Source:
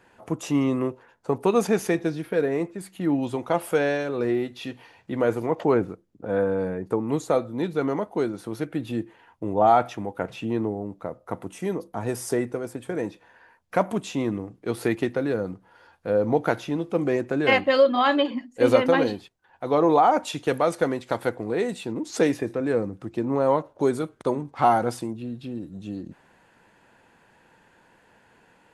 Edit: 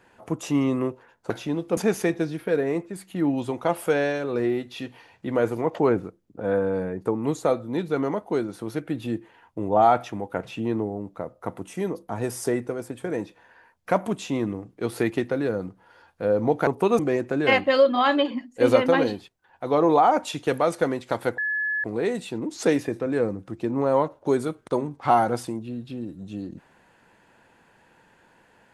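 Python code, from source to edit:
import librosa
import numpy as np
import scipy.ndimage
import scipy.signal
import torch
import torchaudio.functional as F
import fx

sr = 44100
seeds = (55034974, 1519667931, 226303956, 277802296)

y = fx.edit(x, sr, fx.swap(start_s=1.3, length_s=0.32, other_s=16.52, other_length_s=0.47),
    fx.insert_tone(at_s=21.38, length_s=0.46, hz=1710.0, db=-23.0), tone=tone)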